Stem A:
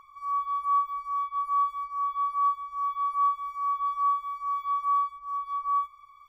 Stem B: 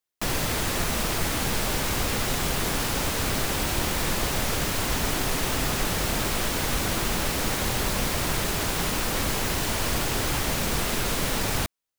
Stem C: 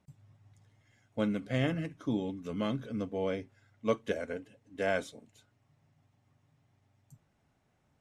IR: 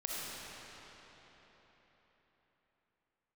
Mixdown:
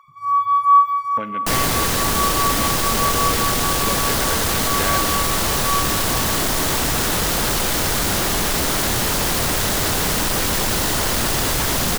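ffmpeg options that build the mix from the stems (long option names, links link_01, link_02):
-filter_complex "[0:a]highpass=720,volume=1.5dB,asplit=2[link_01][link_02];[link_02]volume=-13.5dB[link_03];[1:a]equalizer=frequency=2400:width_type=o:width=0.35:gain=-7.5,aeval=exprs='0.237*sin(PI/2*4.47*val(0)/0.237)':channel_layout=same,adelay=1250,volume=-14dB[link_04];[2:a]acompressor=threshold=-36dB:ratio=6,afwtdn=0.00178,equalizer=frequency=2400:width=0.34:gain=14.5,volume=-7dB,asplit=3[link_05][link_06][link_07];[link_06]volume=-12dB[link_08];[link_07]apad=whole_len=277344[link_09];[link_01][link_09]sidechaincompress=threshold=-56dB:ratio=8:attack=16:release=1460[link_10];[3:a]atrim=start_sample=2205[link_11];[link_03][link_08]amix=inputs=2:normalize=0[link_12];[link_12][link_11]afir=irnorm=-1:irlink=0[link_13];[link_10][link_04][link_05][link_13]amix=inputs=4:normalize=0,dynaudnorm=framelen=140:gausssize=3:maxgain=10dB"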